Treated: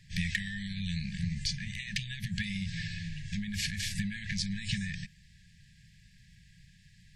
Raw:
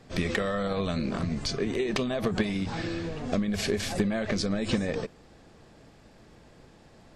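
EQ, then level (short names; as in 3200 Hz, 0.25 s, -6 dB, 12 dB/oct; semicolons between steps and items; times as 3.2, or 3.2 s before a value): brick-wall FIR band-stop 200–1600 Hz; -1.0 dB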